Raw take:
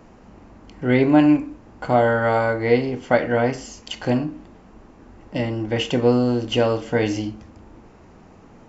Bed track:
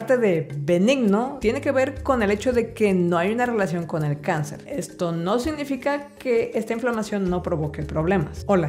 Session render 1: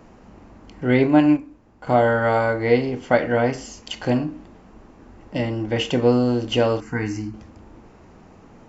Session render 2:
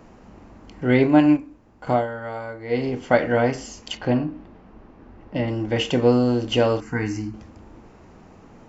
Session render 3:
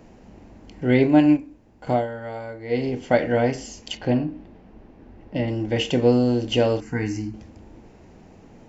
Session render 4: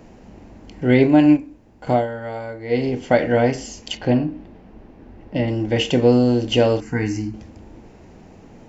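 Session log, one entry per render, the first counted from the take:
1.07–1.87 s: upward expansion, over -28 dBFS; 6.80–7.34 s: static phaser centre 1.4 kHz, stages 4
1.89–2.86 s: dip -12.5 dB, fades 0.18 s; 3.97–5.48 s: distance through air 180 m
peaking EQ 1.2 kHz -9 dB 0.66 oct
trim +3.5 dB; peak limiter -3 dBFS, peak gain reduction 2.5 dB

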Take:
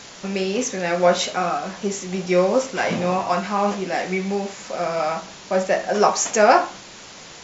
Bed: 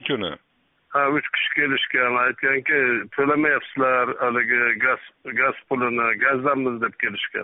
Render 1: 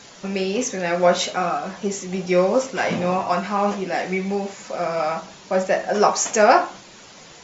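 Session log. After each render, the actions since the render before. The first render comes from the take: noise reduction 6 dB, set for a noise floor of -41 dBFS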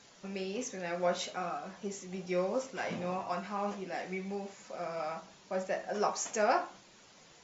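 trim -14.5 dB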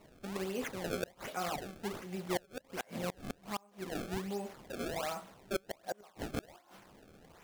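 decimation with a swept rate 26×, swing 160% 1.3 Hz; inverted gate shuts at -25 dBFS, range -29 dB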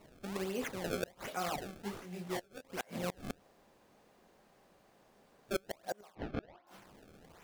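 1.82–2.65 s: detune thickener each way 13 cents; 3.40–5.49 s: room tone; 6.15–6.67 s: distance through air 290 m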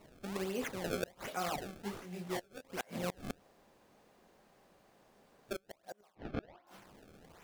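5.53–6.25 s: gain -9 dB

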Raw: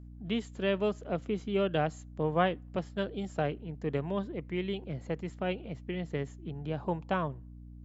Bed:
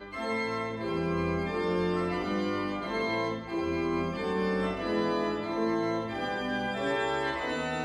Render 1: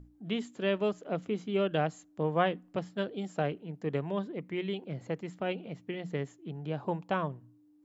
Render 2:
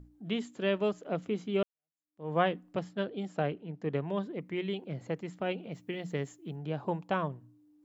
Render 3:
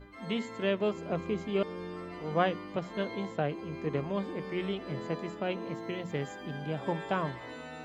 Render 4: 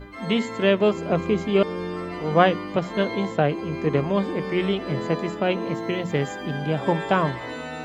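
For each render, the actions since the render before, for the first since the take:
hum notches 60/120/180/240 Hz
1.63–2.32 s: fade in exponential; 2.93–4.10 s: distance through air 69 m; 5.72–6.56 s: treble shelf 6.3 kHz +11 dB
add bed -12 dB
trim +10.5 dB

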